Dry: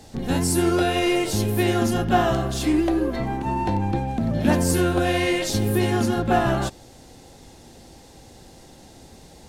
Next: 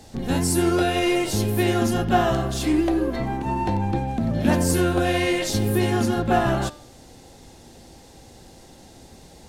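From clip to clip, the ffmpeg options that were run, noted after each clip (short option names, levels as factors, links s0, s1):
-af "bandreject=f=148.6:t=h:w=4,bandreject=f=297.2:t=h:w=4,bandreject=f=445.8:t=h:w=4,bandreject=f=594.4:t=h:w=4,bandreject=f=743:t=h:w=4,bandreject=f=891.6:t=h:w=4,bandreject=f=1040.2:t=h:w=4,bandreject=f=1188.8:t=h:w=4,bandreject=f=1337.4:t=h:w=4,bandreject=f=1486:t=h:w=4,bandreject=f=1634.6:t=h:w=4,bandreject=f=1783.2:t=h:w=4,bandreject=f=1931.8:t=h:w=4,bandreject=f=2080.4:t=h:w=4,bandreject=f=2229:t=h:w=4,bandreject=f=2377.6:t=h:w=4,bandreject=f=2526.2:t=h:w=4,bandreject=f=2674.8:t=h:w=4,bandreject=f=2823.4:t=h:w=4,bandreject=f=2972:t=h:w=4,bandreject=f=3120.6:t=h:w=4,bandreject=f=3269.2:t=h:w=4,bandreject=f=3417.8:t=h:w=4,bandreject=f=3566.4:t=h:w=4,bandreject=f=3715:t=h:w=4,bandreject=f=3863.6:t=h:w=4,bandreject=f=4012.2:t=h:w=4,bandreject=f=4160.8:t=h:w=4,bandreject=f=4309.4:t=h:w=4,bandreject=f=4458:t=h:w=4,bandreject=f=4606.6:t=h:w=4,bandreject=f=4755.2:t=h:w=4,bandreject=f=4903.8:t=h:w=4,bandreject=f=5052.4:t=h:w=4,bandreject=f=5201:t=h:w=4,bandreject=f=5349.6:t=h:w=4"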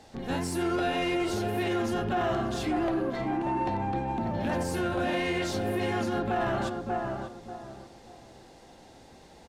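-filter_complex "[0:a]asplit=2[s0][s1];[s1]adelay=588,lowpass=f=1100:p=1,volume=0.562,asplit=2[s2][s3];[s3]adelay=588,lowpass=f=1100:p=1,volume=0.31,asplit=2[s4][s5];[s5]adelay=588,lowpass=f=1100:p=1,volume=0.31,asplit=2[s6][s7];[s7]adelay=588,lowpass=f=1100:p=1,volume=0.31[s8];[s2][s4][s6][s8]amix=inputs=4:normalize=0[s9];[s0][s9]amix=inputs=2:normalize=0,alimiter=limit=0.224:level=0:latency=1:release=29,asplit=2[s10][s11];[s11]highpass=f=720:p=1,volume=3.16,asoftclip=type=tanh:threshold=0.224[s12];[s10][s12]amix=inputs=2:normalize=0,lowpass=f=2100:p=1,volume=0.501,volume=0.501"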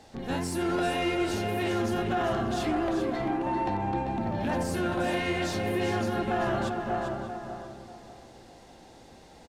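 -af "aecho=1:1:393:0.398"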